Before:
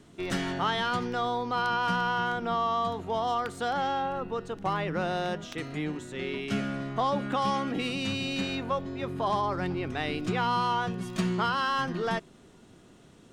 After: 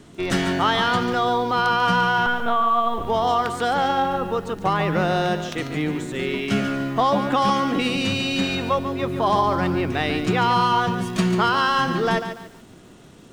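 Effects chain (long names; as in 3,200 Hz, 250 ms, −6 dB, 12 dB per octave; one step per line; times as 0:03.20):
0:02.26–0:03.07: linear-prediction vocoder at 8 kHz pitch kept
feedback echo at a low word length 143 ms, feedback 35%, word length 9 bits, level −9 dB
level +8 dB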